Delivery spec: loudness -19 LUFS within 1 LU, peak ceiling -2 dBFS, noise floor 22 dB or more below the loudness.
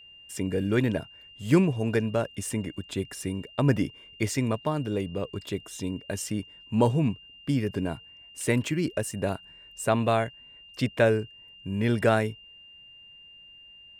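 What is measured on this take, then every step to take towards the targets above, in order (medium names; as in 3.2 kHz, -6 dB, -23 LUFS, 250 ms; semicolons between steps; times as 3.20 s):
steady tone 2.8 kHz; tone level -48 dBFS; loudness -28.0 LUFS; peak level -9.5 dBFS; loudness target -19.0 LUFS
-> band-stop 2.8 kHz, Q 30; trim +9 dB; peak limiter -2 dBFS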